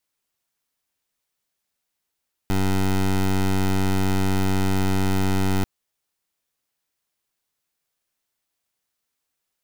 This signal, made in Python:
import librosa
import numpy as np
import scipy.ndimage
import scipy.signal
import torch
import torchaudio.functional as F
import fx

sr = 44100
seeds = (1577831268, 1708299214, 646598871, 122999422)

y = fx.pulse(sr, length_s=3.14, hz=95.8, level_db=-20.0, duty_pct=17)